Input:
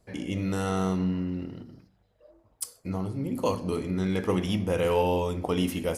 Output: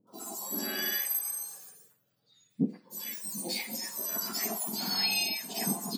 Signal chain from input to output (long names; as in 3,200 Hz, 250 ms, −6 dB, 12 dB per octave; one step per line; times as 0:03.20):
frequency axis turned over on the octave scale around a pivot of 1,500 Hz
three-band delay without the direct sound lows, highs, mids 70/120 ms, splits 850/3,200 Hz